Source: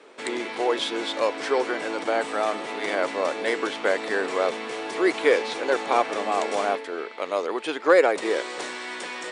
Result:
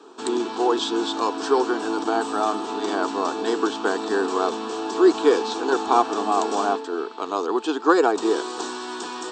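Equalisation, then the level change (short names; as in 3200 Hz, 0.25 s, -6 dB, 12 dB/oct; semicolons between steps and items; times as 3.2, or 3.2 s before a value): brick-wall FIR low-pass 8500 Hz; low shelf 180 Hz +10 dB; fixed phaser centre 560 Hz, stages 6; +5.5 dB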